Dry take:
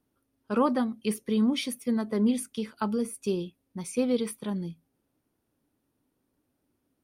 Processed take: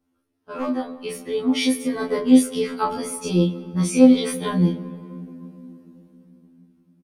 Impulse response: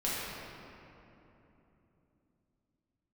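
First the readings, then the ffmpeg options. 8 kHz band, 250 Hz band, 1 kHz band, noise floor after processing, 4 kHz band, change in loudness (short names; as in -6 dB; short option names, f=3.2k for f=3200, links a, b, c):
+8.5 dB, +9.0 dB, +6.0 dB, -72 dBFS, +8.5 dB, +8.5 dB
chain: -filter_complex "[0:a]highshelf=f=11k:g=-11,aeval=exprs='0.15*(abs(mod(val(0)/0.15+3,4)-2)-1)':c=same,alimiter=limit=-23.5dB:level=0:latency=1:release=29,dynaudnorm=f=220:g=13:m=12dB,asplit=2[a][b];[b]adelay=27,volume=-2.5dB[c];[a][c]amix=inputs=2:normalize=0,bandreject=f=62.56:t=h:w=4,bandreject=f=125.12:t=h:w=4,bandreject=f=187.68:t=h:w=4,asplit=2[d][e];[1:a]atrim=start_sample=2205[f];[e][f]afir=irnorm=-1:irlink=0,volume=-20dB[g];[d][g]amix=inputs=2:normalize=0,afftfilt=real='re*2*eq(mod(b,4),0)':imag='im*2*eq(mod(b,4),0)':win_size=2048:overlap=0.75,volume=1.5dB"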